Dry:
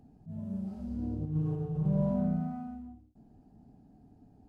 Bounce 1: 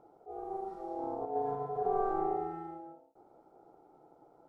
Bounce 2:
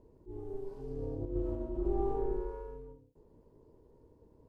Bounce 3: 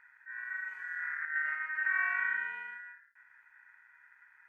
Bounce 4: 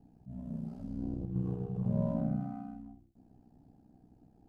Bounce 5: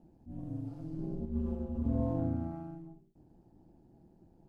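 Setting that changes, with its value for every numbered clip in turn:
ring modulator, frequency: 580, 200, 1700, 31, 80 Hz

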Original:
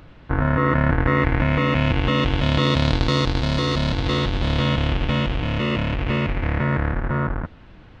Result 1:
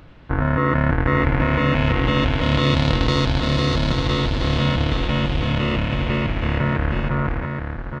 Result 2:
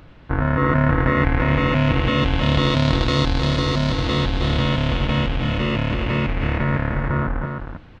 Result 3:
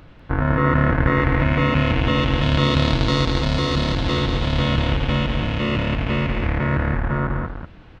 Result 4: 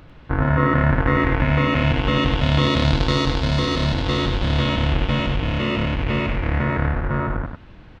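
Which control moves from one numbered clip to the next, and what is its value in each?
echo, time: 822, 313, 195, 97 ms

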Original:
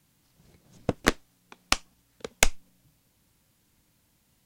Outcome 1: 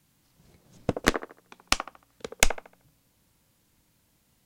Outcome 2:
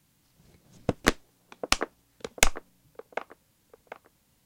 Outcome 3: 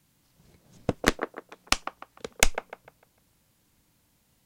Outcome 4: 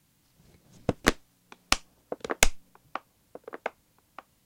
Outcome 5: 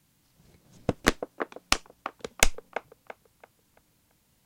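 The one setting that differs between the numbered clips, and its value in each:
band-limited delay, time: 76, 745, 150, 1231, 336 ms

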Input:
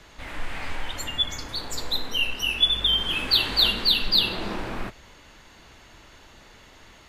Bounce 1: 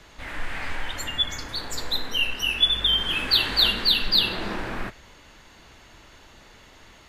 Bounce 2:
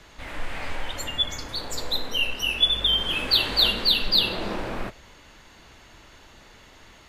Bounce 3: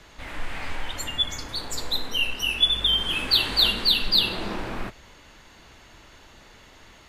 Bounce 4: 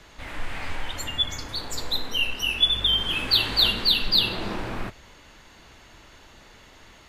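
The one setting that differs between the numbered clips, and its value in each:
dynamic EQ, frequency: 1700, 550, 9200, 100 Hz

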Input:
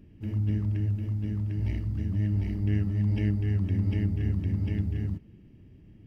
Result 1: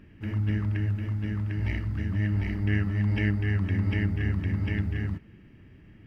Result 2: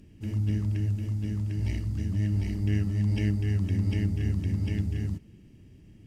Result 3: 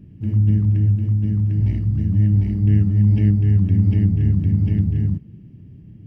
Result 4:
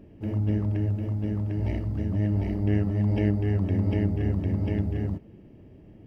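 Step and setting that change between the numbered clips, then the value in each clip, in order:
bell, frequency: 1600, 7700, 140, 620 Hz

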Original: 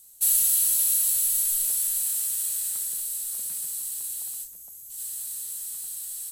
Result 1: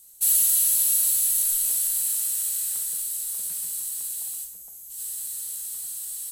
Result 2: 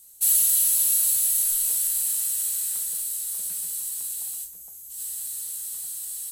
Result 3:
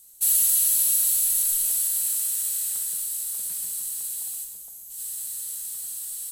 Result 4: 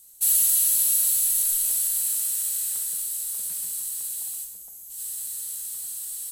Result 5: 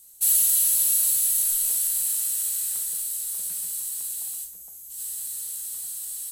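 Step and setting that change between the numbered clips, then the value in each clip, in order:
non-linear reverb, gate: 200, 80, 530, 310, 130 ms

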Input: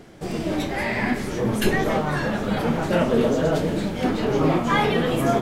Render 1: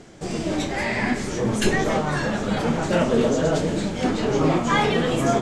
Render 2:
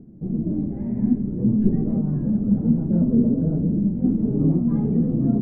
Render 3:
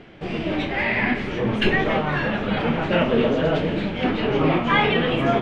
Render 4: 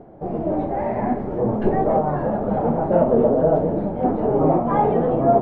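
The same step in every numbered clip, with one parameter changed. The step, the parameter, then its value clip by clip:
synth low-pass, frequency: 7400, 220, 2800, 740 Hz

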